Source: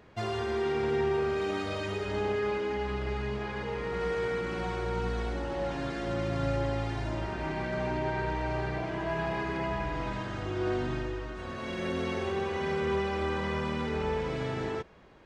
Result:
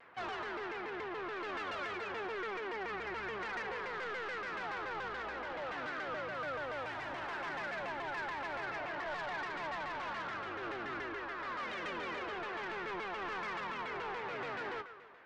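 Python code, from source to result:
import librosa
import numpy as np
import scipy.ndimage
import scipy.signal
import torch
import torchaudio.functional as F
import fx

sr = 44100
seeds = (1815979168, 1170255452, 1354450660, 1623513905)

y = fx.crossing_spikes(x, sr, level_db=-36.0, at=(6.34, 8.66))
y = fx.rider(y, sr, range_db=4, speed_s=0.5)
y = fx.bandpass_q(y, sr, hz=1500.0, q=1.2)
y = 10.0 ** (-38.5 / 20.0) * np.tanh(y / 10.0 ** (-38.5 / 20.0))
y = fx.air_absorb(y, sr, metres=72.0)
y = fx.rev_plate(y, sr, seeds[0], rt60_s=1.8, hf_ratio=0.95, predelay_ms=0, drr_db=12.5)
y = fx.vibrato_shape(y, sr, shape='saw_down', rate_hz=7.0, depth_cents=250.0)
y = F.gain(torch.from_numpy(y), 3.5).numpy()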